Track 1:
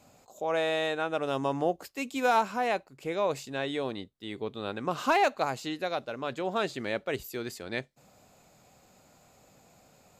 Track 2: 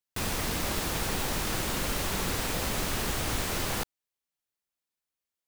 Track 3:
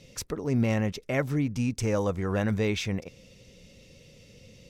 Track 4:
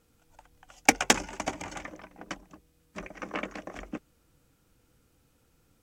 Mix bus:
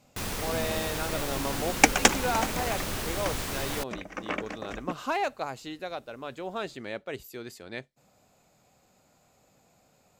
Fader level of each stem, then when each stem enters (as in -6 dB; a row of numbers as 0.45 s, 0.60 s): -4.5 dB, -2.5 dB, -14.5 dB, +2.0 dB; 0.00 s, 0.00 s, 0.00 s, 0.95 s